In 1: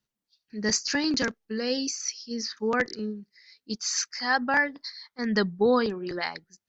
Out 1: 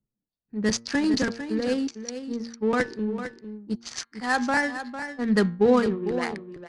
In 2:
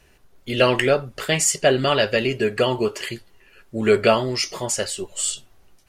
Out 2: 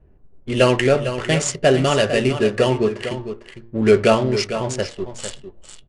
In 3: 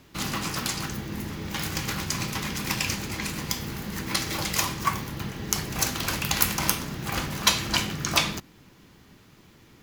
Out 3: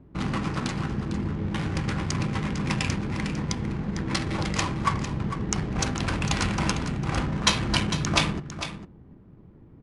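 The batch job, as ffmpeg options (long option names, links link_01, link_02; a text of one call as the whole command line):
ffmpeg -i in.wav -filter_complex "[0:a]lowpass=frequency=8500:width=0.5412,lowpass=frequency=8500:width=1.3066,lowshelf=frequency=420:gain=7,bandreject=frequency=116:width_type=h:width=4,bandreject=frequency=232:width_type=h:width=4,bandreject=frequency=348:width_type=h:width=4,bandreject=frequency=464:width_type=h:width=4,bandreject=frequency=580:width_type=h:width=4,bandreject=frequency=696:width_type=h:width=4,bandreject=frequency=812:width_type=h:width=4,bandreject=frequency=928:width_type=h:width=4,bandreject=frequency=1044:width_type=h:width=4,bandreject=frequency=1160:width_type=h:width=4,bandreject=frequency=1276:width_type=h:width=4,bandreject=frequency=1392:width_type=h:width=4,bandreject=frequency=1508:width_type=h:width=4,bandreject=frequency=1624:width_type=h:width=4,bandreject=frequency=1740:width_type=h:width=4,bandreject=frequency=1856:width_type=h:width=4,bandreject=frequency=1972:width_type=h:width=4,bandreject=frequency=2088:width_type=h:width=4,bandreject=frequency=2204:width_type=h:width=4,bandreject=frequency=2320:width_type=h:width=4,bandreject=frequency=2436:width_type=h:width=4,bandreject=frequency=2552:width_type=h:width=4,bandreject=frequency=2668:width_type=h:width=4,bandreject=frequency=2784:width_type=h:width=4,bandreject=frequency=2900:width_type=h:width=4,bandreject=frequency=3016:width_type=h:width=4,bandreject=frequency=3132:width_type=h:width=4,bandreject=frequency=3248:width_type=h:width=4,bandreject=frequency=3364:width_type=h:width=4,bandreject=frequency=3480:width_type=h:width=4,bandreject=frequency=3596:width_type=h:width=4,bandreject=frequency=3712:width_type=h:width=4,bandreject=frequency=3828:width_type=h:width=4,bandreject=frequency=3944:width_type=h:width=4,bandreject=frequency=4060:width_type=h:width=4,bandreject=frequency=4176:width_type=h:width=4,bandreject=frequency=4292:width_type=h:width=4,bandreject=frequency=4408:width_type=h:width=4,bandreject=frequency=4524:width_type=h:width=4,adynamicsmooth=sensitivity=4:basefreq=710,asplit=2[link_01][link_02];[link_02]aecho=0:1:452:0.299[link_03];[link_01][link_03]amix=inputs=2:normalize=0" -ar 24000 -c:a libmp3lame -b:a 96k out.mp3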